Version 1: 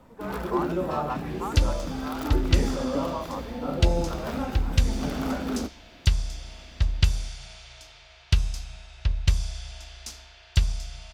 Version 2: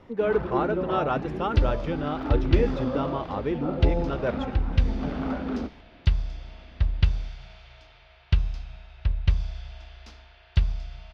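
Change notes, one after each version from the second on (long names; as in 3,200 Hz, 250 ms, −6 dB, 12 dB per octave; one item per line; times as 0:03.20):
speech: remove resonant band-pass 1,000 Hz, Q 4.4
master: add high-frequency loss of the air 300 metres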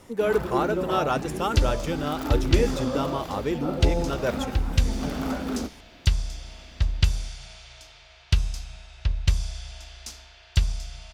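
master: remove high-frequency loss of the air 300 metres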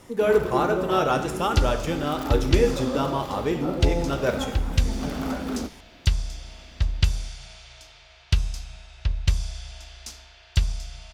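reverb: on, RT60 0.95 s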